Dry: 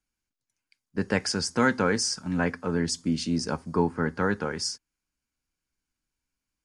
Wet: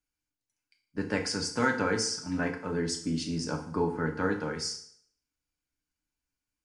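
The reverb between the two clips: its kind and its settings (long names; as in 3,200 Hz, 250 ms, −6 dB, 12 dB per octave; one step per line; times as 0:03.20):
feedback delay network reverb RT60 0.6 s, low-frequency decay 0.95×, high-frequency decay 0.95×, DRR 2.5 dB
level −5.5 dB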